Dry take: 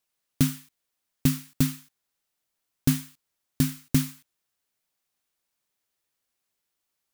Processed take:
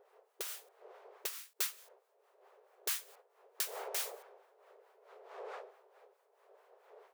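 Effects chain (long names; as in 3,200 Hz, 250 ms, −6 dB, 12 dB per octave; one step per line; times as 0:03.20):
wind on the microphone 520 Hz −44 dBFS
two-band tremolo in antiphase 4.6 Hz, depth 70%, crossover 740 Hz
linear-phase brick-wall high-pass 380 Hz
level −2.5 dB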